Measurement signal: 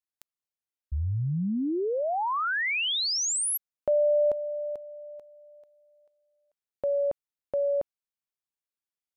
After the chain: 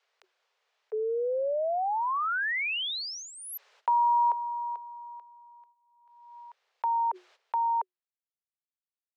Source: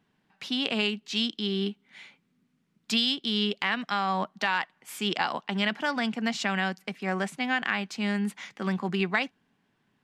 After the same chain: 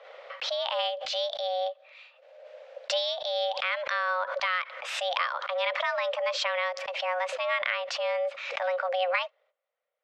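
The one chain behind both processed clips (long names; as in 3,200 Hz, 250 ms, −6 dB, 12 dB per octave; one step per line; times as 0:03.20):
noise gate −60 dBFS, range −14 dB
high-pass filter 50 Hz 6 dB per octave
high-shelf EQ 8,500 Hz −9.5 dB
frequency shifter +360 Hz
high-frequency loss of the air 160 metres
background raised ahead of every attack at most 43 dB per second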